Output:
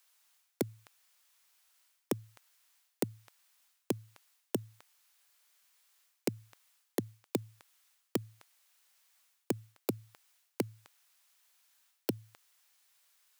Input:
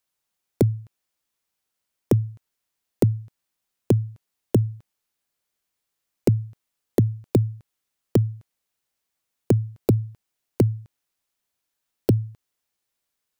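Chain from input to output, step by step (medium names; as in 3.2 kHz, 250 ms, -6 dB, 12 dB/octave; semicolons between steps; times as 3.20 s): high-pass 950 Hz 12 dB/octave; reverse; compression, threshold -41 dBFS, peak gain reduction 13.5 dB; reverse; trim +11 dB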